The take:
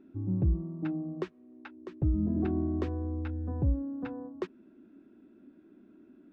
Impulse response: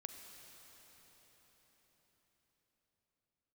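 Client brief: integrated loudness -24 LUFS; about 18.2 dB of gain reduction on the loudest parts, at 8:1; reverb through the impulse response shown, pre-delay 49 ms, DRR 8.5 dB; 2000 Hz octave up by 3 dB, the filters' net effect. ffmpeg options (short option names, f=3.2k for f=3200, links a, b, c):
-filter_complex "[0:a]equalizer=f=2k:t=o:g=4,acompressor=threshold=-42dB:ratio=8,asplit=2[a][b];[1:a]atrim=start_sample=2205,adelay=49[c];[b][c]afir=irnorm=-1:irlink=0,volume=-4.5dB[d];[a][d]amix=inputs=2:normalize=0,volume=22.5dB"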